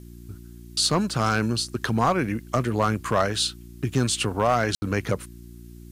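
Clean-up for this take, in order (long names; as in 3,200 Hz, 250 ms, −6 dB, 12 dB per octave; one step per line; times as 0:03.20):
clipped peaks rebuilt −12.5 dBFS
hum removal 58.8 Hz, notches 6
ambience match 0:04.75–0:04.82
downward expander −35 dBFS, range −21 dB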